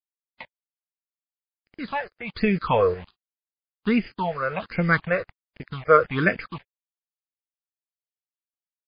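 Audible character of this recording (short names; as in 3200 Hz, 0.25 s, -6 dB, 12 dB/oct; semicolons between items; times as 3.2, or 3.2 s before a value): chopped level 0.85 Hz, depth 60%, duty 50%; a quantiser's noise floor 6-bit, dither none; phasing stages 6, 1.3 Hz, lowest notch 220–1100 Hz; MP3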